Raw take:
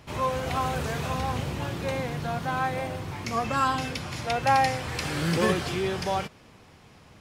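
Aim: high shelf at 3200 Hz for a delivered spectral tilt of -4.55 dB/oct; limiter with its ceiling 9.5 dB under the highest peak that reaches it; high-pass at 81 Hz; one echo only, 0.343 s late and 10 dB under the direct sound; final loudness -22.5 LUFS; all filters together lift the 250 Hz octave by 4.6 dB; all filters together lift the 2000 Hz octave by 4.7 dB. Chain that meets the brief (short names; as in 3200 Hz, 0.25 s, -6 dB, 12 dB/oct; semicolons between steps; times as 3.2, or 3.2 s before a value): HPF 81 Hz; bell 250 Hz +6.5 dB; bell 2000 Hz +4 dB; high shelf 3200 Hz +5.5 dB; limiter -17.5 dBFS; echo 0.343 s -10 dB; gain +4.5 dB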